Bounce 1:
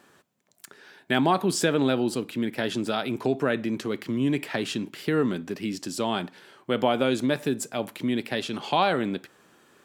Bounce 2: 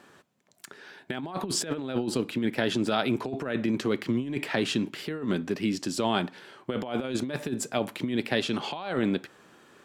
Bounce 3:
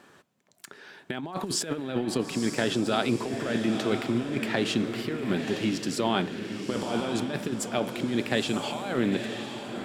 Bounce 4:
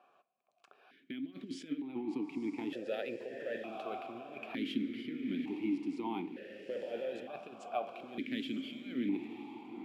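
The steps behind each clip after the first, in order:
high-shelf EQ 9,700 Hz −9.5 dB; compressor whose output falls as the input rises −27 dBFS, ratio −0.5
feedback delay with all-pass diffusion 934 ms, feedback 43%, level −6.5 dB
on a send at −16 dB: convolution reverb RT60 0.50 s, pre-delay 4 ms; on the sum: bad sample-rate conversion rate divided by 3×, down none, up hold; formant filter that steps through the vowels 1.1 Hz

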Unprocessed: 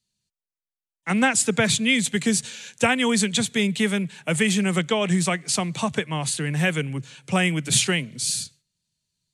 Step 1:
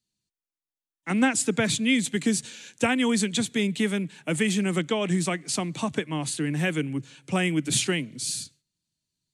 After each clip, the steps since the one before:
parametric band 300 Hz +11.5 dB 0.5 octaves
level −5 dB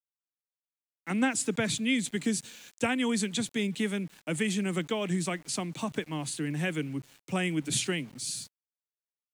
centre clipping without the shift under −45 dBFS
level −5 dB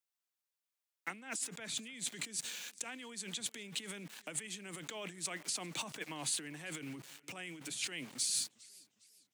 compressor whose output falls as the input rises −37 dBFS, ratio −1
high-pass filter 750 Hz 6 dB per octave
feedback echo with a swinging delay time 403 ms, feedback 42%, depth 155 cents, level −23 dB
level −1.5 dB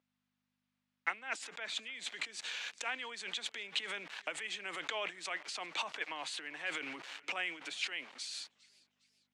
speech leveller within 5 dB 0.5 s
mains hum 50 Hz, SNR 22 dB
band-pass filter 650–3,300 Hz
level +6.5 dB

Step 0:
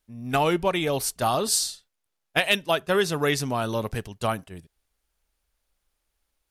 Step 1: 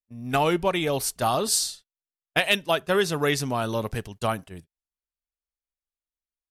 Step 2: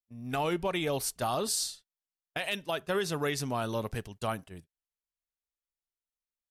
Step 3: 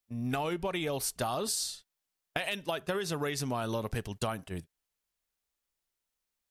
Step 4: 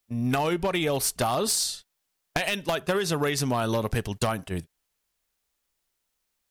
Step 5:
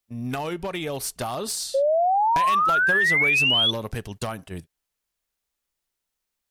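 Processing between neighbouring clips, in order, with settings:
noise gate −43 dBFS, range −24 dB
brickwall limiter −15.5 dBFS, peak gain reduction 9.5 dB; level −5.5 dB
downward compressor 10 to 1, threshold −38 dBFS, peak gain reduction 13 dB; level +8.5 dB
wavefolder on the positive side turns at −26 dBFS; level +7.5 dB
sound drawn into the spectrogram rise, 0:01.74–0:03.71, 530–3,500 Hz −16 dBFS; level −4 dB

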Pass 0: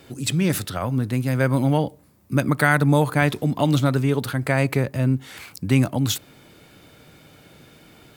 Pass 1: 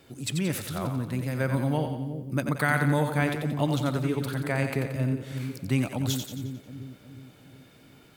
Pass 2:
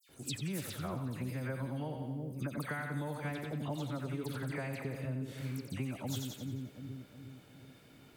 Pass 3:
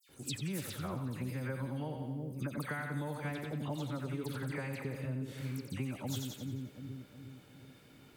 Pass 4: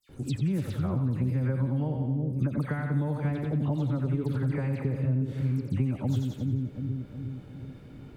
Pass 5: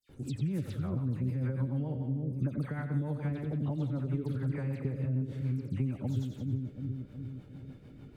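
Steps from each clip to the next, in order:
echo with a time of its own for lows and highs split 460 Hz, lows 364 ms, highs 89 ms, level −6.5 dB; level −7.5 dB
downward compressor, threshold −30 dBFS, peak gain reduction 11 dB; all-pass dispersion lows, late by 92 ms, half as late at 2,700 Hz; level −4.5 dB
notch filter 670 Hz, Q 12
spectral tilt −3.5 dB per octave; in parallel at −1.5 dB: downward compressor, threshold −36 dBFS, peak gain reduction 12 dB
rotating-speaker cabinet horn 6.7 Hz; level −3.5 dB

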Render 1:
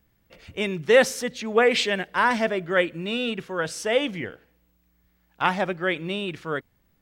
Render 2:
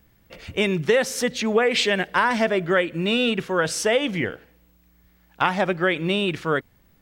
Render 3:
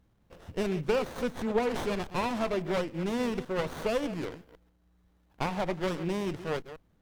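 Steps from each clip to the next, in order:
downward compressor 6 to 1, threshold −24 dBFS, peak gain reduction 12.5 dB; level +7.5 dB
delay that plays each chunk backwards 138 ms, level −13 dB; windowed peak hold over 17 samples; level −7.5 dB

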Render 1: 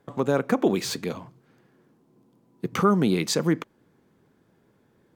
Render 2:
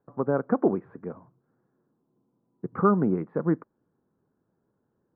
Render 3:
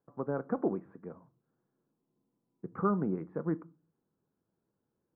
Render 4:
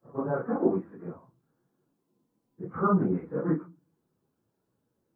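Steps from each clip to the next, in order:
Butterworth low-pass 1,500 Hz 36 dB per octave; expander for the loud parts 1.5 to 1, over −39 dBFS
convolution reverb RT60 0.35 s, pre-delay 6 ms, DRR 15.5 dB; level −8.5 dB
random phases in long frames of 100 ms; level +5.5 dB

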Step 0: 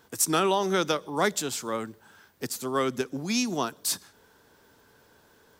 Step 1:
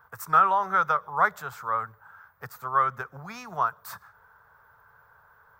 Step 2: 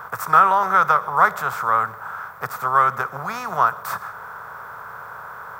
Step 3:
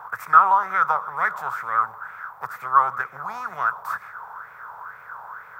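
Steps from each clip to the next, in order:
drawn EQ curve 110 Hz 0 dB, 160 Hz −5 dB, 300 Hz −28 dB, 430 Hz −10 dB, 1,300 Hz +11 dB, 2,900 Hz −16 dB, 7,200 Hz −20 dB, 11,000 Hz −19 dB, 15,000 Hz −2 dB
compressor on every frequency bin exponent 0.6; level +4 dB
pitch vibrato 12 Hz 25 cents; auto-filter bell 2.1 Hz 820–2,300 Hz +16 dB; level −12 dB

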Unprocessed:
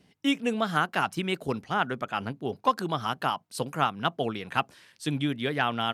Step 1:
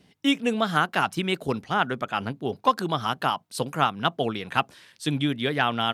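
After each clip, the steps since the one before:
parametric band 3,600 Hz +3 dB 0.32 octaves
level +3 dB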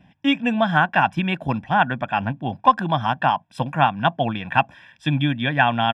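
Savitzky-Golay smoothing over 25 samples
comb filter 1.2 ms, depth 85%
level +3.5 dB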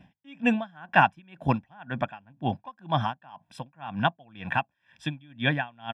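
tremolo with a sine in dB 2 Hz, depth 33 dB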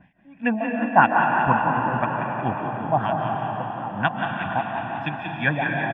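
auto-filter low-pass sine 3 Hz 650–2,400 Hz
on a send: echo with shifted repeats 181 ms, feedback 61%, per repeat +31 Hz, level −7.5 dB
on the sum: comb and all-pass reverb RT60 4.4 s, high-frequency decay 0.7×, pre-delay 105 ms, DRR 1 dB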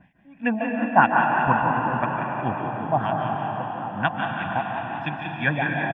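single-tap delay 148 ms −10.5 dB
level −1 dB

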